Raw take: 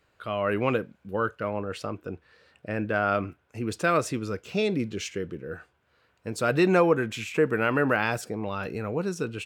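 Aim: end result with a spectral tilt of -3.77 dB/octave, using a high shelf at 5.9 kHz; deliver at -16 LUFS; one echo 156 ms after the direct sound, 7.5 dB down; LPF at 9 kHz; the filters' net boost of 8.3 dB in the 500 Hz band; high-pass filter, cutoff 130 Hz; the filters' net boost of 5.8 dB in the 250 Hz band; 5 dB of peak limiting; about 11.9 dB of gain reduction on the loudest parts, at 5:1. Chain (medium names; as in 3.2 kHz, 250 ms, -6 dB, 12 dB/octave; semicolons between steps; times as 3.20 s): high-pass 130 Hz; low-pass 9 kHz; peaking EQ 250 Hz +5 dB; peaking EQ 500 Hz +8.5 dB; treble shelf 5.9 kHz -8 dB; compression 5:1, threshold -22 dBFS; peak limiter -17.5 dBFS; delay 156 ms -7.5 dB; trim +12.5 dB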